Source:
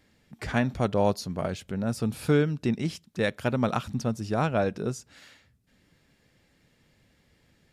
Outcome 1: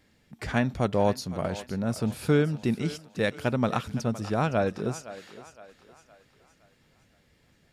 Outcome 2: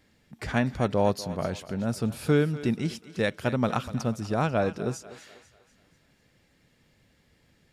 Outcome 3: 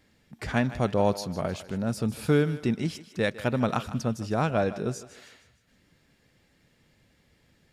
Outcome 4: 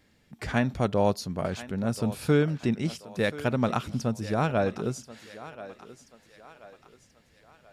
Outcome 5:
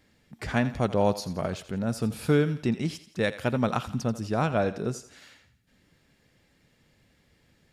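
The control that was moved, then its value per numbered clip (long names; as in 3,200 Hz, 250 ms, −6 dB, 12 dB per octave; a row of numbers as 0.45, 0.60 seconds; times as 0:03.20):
feedback echo with a high-pass in the loop, delay time: 514, 245, 154, 1,032, 85 milliseconds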